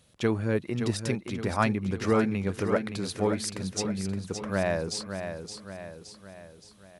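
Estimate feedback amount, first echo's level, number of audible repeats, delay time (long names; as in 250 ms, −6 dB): 50%, −8.0 dB, 5, 569 ms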